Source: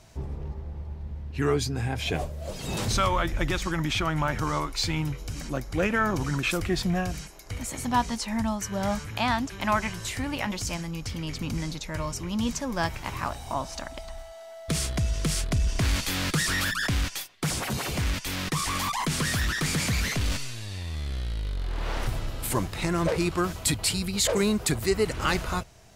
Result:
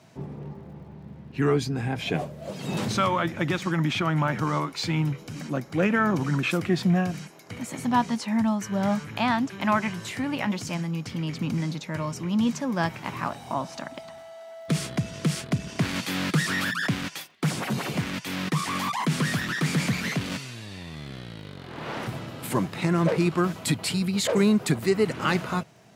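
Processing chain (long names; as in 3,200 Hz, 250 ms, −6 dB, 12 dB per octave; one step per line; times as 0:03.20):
high-pass filter 150 Hz 24 dB per octave
bass and treble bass +7 dB, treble −7 dB
surface crackle 65 per second −54 dBFS
level +1 dB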